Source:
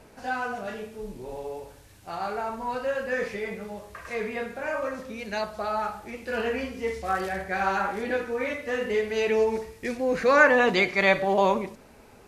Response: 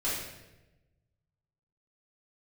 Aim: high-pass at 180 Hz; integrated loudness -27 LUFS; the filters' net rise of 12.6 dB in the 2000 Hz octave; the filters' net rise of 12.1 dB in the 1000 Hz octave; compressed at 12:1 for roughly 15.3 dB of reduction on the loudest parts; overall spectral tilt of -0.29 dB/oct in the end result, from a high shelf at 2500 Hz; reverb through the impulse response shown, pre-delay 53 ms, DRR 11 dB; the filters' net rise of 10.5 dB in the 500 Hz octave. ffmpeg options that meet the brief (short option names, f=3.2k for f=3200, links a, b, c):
-filter_complex "[0:a]highpass=180,equalizer=f=500:t=o:g=9,equalizer=f=1k:t=o:g=9,equalizer=f=2k:t=o:g=8.5,highshelf=f=2.5k:g=8.5,acompressor=threshold=-16dB:ratio=12,asplit=2[a][b];[1:a]atrim=start_sample=2205,adelay=53[c];[b][c]afir=irnorm=-1:irlink=0,volume=-18.5dB[d];[a][d]amix=inputs=2:normalize=0,volume=-5.5dB"